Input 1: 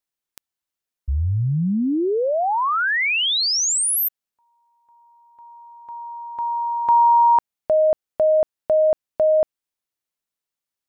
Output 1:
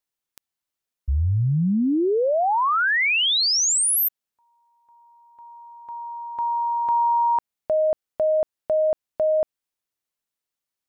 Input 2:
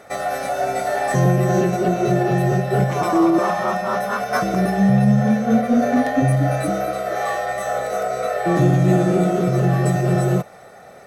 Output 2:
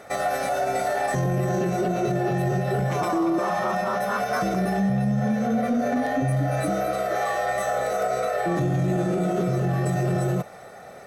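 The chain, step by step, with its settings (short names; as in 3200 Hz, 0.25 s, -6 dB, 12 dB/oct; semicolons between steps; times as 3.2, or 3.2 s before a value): limiter -16.5 dBFS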